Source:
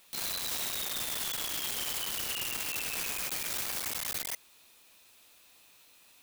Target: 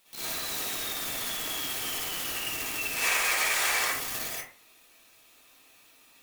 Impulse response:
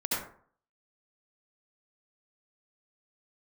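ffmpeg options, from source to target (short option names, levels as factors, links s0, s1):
-filter_complex "[0:a]asettb=1/sr,asplit=3[s0][s1][s2];[s0]atrim=end=2.964[s3];[s1]atrim=start=2.96:end=3.86,asetpts=PTS-STARTPTS,afade=t=in:d=0.004:c=qsin,afade=t=out:st=0.896:d=0.004:c=qsin,equalizer=f=125:t=o:w=1:g=-5,equalizer=f=250:t=o:w=1:g=-7,equalizer=f=500:t=o:w=1:g=6,equalizer=f=1000:t=o:w=1:g=8,equalizer=f=2000:t=o:w=1:g=10,equalizer=f=4000:t=o:w=1:g=4,equalizer=f=8000:t=o:w=1:g=6[s4];[s2]atrim=start=3.856[s5];[s3][s4]acrossfade=d=0.004:c1=hsin:c2=qsin[s6];[s6][s5]acrossfade=d=0.004:c1=qsin:c2=hsin[s7];[1:a]atrim=start_sample=2205,asetrate=57330,aresample=44100[s8];[s7][s8]afir=irnorm=-1:irlink=0,volume=0.841"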